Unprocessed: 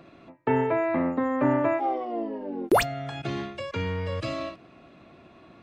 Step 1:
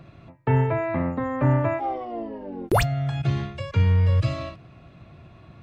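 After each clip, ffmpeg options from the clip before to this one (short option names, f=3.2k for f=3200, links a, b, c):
-af "lowshelf=f=180:t=q:w=1.5:g=12"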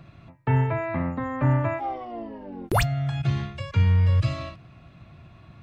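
-af "equalizer=f=440:w=1.1:g=-6"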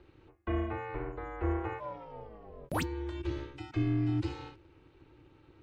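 -af "aeval=exprs='val(0)*sin(2*PI*210*n/s)':c=same,volume=-8dB"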